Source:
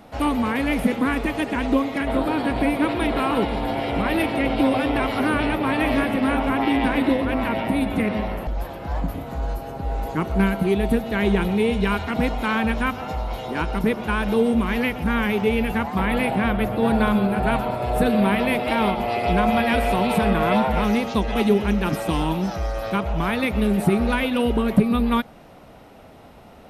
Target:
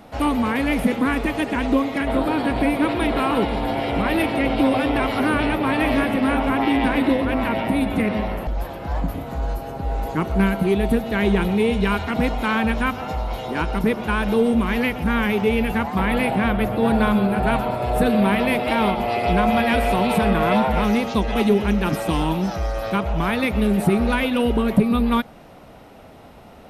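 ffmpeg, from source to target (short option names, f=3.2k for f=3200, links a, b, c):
-af "acontrast=41,volume=-4dB"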